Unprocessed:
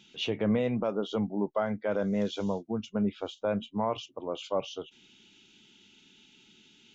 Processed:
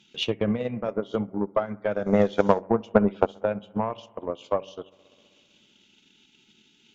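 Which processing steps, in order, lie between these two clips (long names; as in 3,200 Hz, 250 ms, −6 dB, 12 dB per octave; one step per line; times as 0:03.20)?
hum removal 95.51 Hz, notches 6
0:02.06–0:03.26: parametric band 890 Hz +11.5 dB 3 octaves
harmonic generator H 4 −27 dB, 7 −32 dB, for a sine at −8.5 dBFS
bucket-brigade delay 64 ms, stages 1,024, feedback 78%, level −17 dB
transient designer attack +9 dB, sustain −7 dB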